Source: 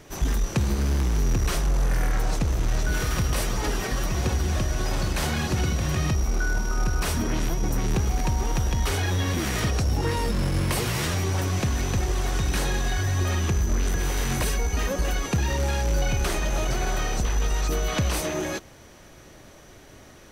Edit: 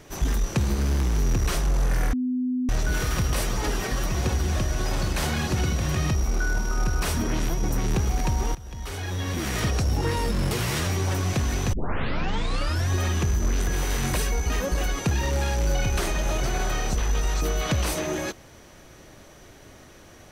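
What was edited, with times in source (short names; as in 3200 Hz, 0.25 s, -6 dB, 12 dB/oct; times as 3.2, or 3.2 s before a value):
2.13–2.69 bleep 252 Hz -22.5 dBFS
8.55–9.67 fade in, from -21 dB
10.51–10.78 cut
12 tape start 1.17 s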